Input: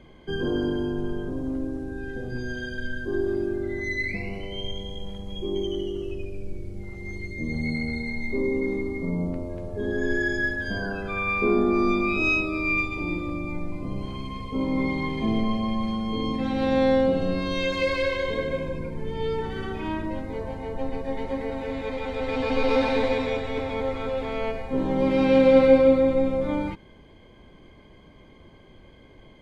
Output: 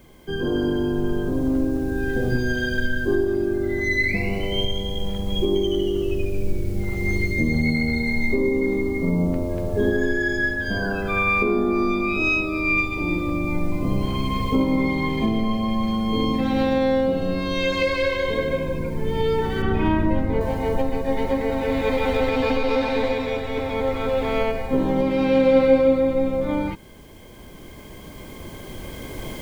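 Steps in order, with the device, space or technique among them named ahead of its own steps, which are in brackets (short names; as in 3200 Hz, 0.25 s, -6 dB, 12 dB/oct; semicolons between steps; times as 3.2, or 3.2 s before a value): cheap recorder with automatic gain (white noise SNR 37 dB; recorder AGC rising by 5.4 dB/s); 19.62–20.41 tone controls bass +5 dB, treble -11 dB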